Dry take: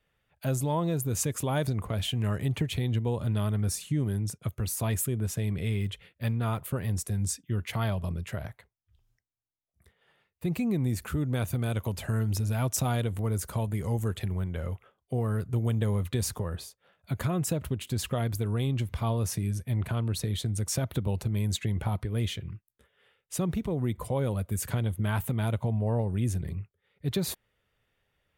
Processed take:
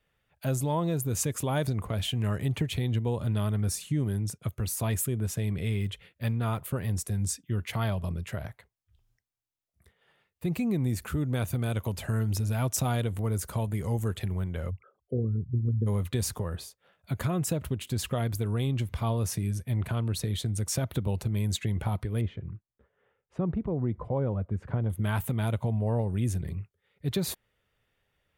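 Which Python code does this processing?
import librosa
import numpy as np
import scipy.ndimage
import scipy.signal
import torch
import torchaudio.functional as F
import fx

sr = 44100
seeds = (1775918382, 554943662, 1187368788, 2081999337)

y = fx.envelope_sharpen(x, sr, power=3.0, at=(14.69, 15.86), fade=0.02)
y = fx.lowpass(y, sr, hz=1200.0, slope=12, at=(22.21, 24.9))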